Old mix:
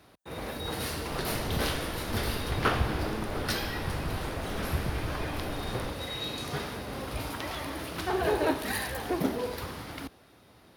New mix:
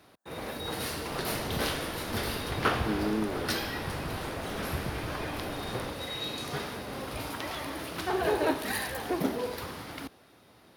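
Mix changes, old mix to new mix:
speech +9.5 dB; master: add bass shelf 71 Hz -11 dB

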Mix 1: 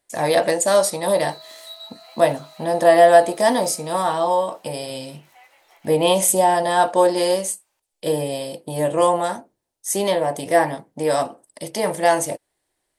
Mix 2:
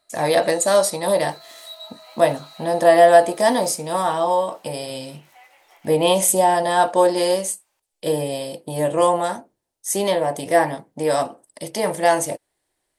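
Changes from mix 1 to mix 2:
first sound: entry -0.55 s; reverb: on, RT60 2.2 s

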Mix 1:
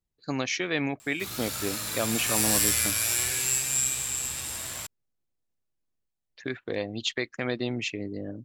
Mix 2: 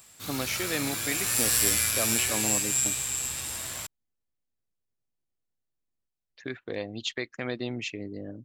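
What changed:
speech -3.0 dB; background: entry -1.00 s

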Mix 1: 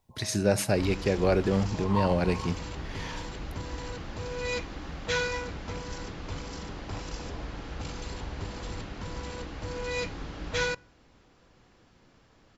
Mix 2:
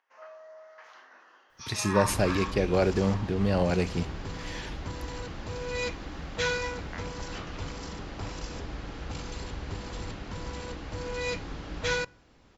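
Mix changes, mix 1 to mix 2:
speech: entry +1.50 s; first sound: remove brick-wall FIR low-pass 1.1 kHz; second sound: entry +1.30 s

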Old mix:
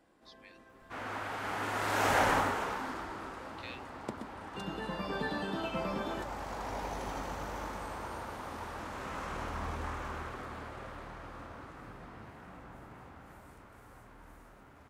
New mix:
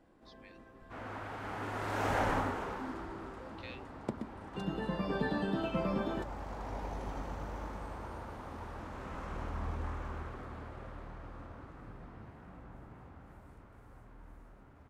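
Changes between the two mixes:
second sound -5.0 dB; master: add tilt EQ -2 dB/octave

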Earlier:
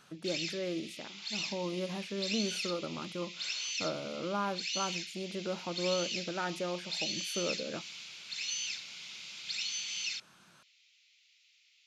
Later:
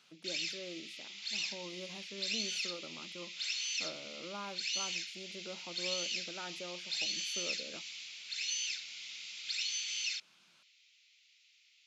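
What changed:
speech -10.0 dB; master: add high-pass 170 Hz 12 dB/octave

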